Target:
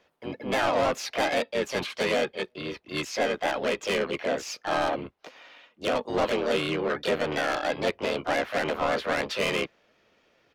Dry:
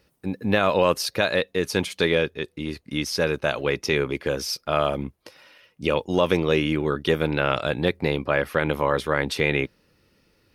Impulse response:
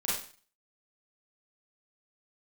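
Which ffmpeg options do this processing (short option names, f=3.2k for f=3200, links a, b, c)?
-filter_complex "[0:a]acrossover=split=350 3700:gain=0.141 1 0.126[a][b][c];[a][b][c]amix=inputs=3:normalize=0,asoftclip=type=tanh:threshold=-23dB,asplit=3[d][e][f];[e]asetrate=22050,aresample=44100,atempo=2,volume=-8dB[g];[f]asetrate=55563,aresample=44100,atempo=0.793701,volume=-1dB[h];[d][g][h]amix=inputs=3:normalize=0"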